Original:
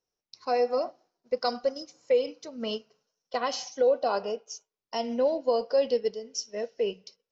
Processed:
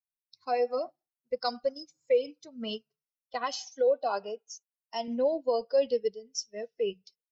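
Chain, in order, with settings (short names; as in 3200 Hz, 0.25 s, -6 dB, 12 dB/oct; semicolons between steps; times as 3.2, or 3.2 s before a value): per-bin expansion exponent 1.5; 3.44–5.08 HPF 210 Hz 6 dB/oct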